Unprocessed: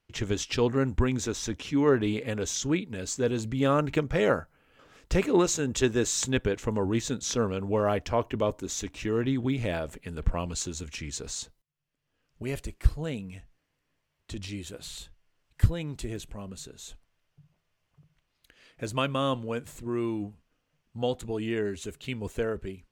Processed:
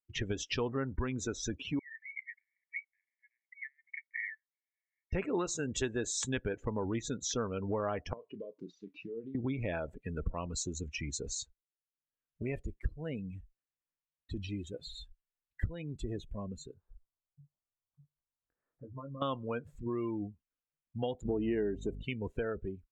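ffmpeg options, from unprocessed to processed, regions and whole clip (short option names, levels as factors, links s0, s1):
-filter_complex "[0:a]asettb=1/sr,asplit=3[s0][s1][s2];[s0]atrim=end=1.794[s3];[s1]atrim=start=1.79:end=5.13,asetpts=PTS-STARTPTS,afade=t=in:d=0.004:c=qsin,afade=t=out:st=3.336:d=0.004:c=qsin,asuperpass=centerf=2000:order=12:qfactor=3.8,aecho=1:1:0.8:0.36,atrim=end_sample=147294[s4];[s2]atrim=start=5.126[s5];[s3][s4]acrossfade=d=0.004:c1=hsin:c2=qsin[s6];[s6][s5]acrossfade=d=0.004:c1=qsin:c2=hsin,asettb=1/sr,asplit=3[s7][s8][s9];[s7]atrim=end=8.134[s10];[s8]atrim=start=8.13:end=9.35,asetpts=PTS-STARTPTS,afade=t=in:d=0.004:c=qsin,afade=t=out:st=1.216:d=0.004:c=qsin,acompressor=threshold=0.01:ratio=16:attack=3.2:release=140:knee=1:detection=peak,highpass=170,equalizer=f=180:t=q:w=4:g=8,equalizer=f=460:t=q:w=4:g=5,equalizer=f=750:t=q:w=4:g=-7,equalizer=f=1700:t=q:w=4:g=-5,equalizer=f=4700:t=q:w=4:g=8,lowpass=f=5100:w=0.5412,lowpass=f=5100:w=1.3066,asplit=2[s11][s12];[s12]adelay=35,volume=0.299[s13];[s11][s13]amix=inputs=2:normalize=0,atrim=end_sample=53802[s14];[s9]atrim=start=9.346[s15];[s10][s14]acrossfade=d=0.004:c1=hsin:c2=qsin[s16];[s16][s15]acrossfade=d=0.004:c1=qsin:c2=hsin,asettb=1/sr,asplit=3[s17][s18][s19];[s17]atrim=end=16.744[s20];[s18]atrim=start=16.74:end=19.22,asetpts=PTS-STARTPTS,afade=t=in:d=0.004:c=qsin,afade=t=out:st=2.476:d=0.004:c=qsin,lowpass=f=1300:w=0.5412,lowpass=f=1300:w=1.3066,acompressor=threshold=0.00501:ratio=4:attack=3.2:release=140:knee=1:detection=peak,asplit=2[s21][s22];[s22]adelay=22,volume=0.596[s23];[s21][s23]amix=inputs=2:normalize=0,atrim=end_sample=109368[s24];[s19]atrim=start=19.216[s25];[s20][s24]acrossfade=d=0.004:c1=hsin:c2=qsin[s26];[s26][s25]acrossfade=d=0.004:c1=qsin:c2=hsin,asettb=1/sr,asplit=3[s27][s28][s29];[s27]atrim=end=21.254[s30];[s28]atrim=start=21.25:end=22.03,asetpts=PTS-STARTPTS,afade=t=in:d=0.004:c=qsin,afade=t=out:st=0.776:d=0.004:c=qsin,equalizer=f=300:t=o:w=2.3:g=11,aeval=exprs='val(0)+0.0158*(sin(2*PI*50*n/s)+sin(2*PI*2*50*n/s)/2+sin(2*PI*3*50*n/s)/3+sin(2*PI*4*50*n/s)/4+sin(2*PI*5*50*n/s)/5)':c=same[s31];[s29]atrim=start=22.026[s32];[s30][s31]acrossfade=d=0.004:c1=hsin:c2=qsin[s33];[s33][s32]acrossfade=d=0.004:c1=qsin:c2=hsin,afftdn=nr=28:nf=-37,equalizer=f=1400:t=o:w=2:g=5,acompressor=threshold=0.02:ratio=3"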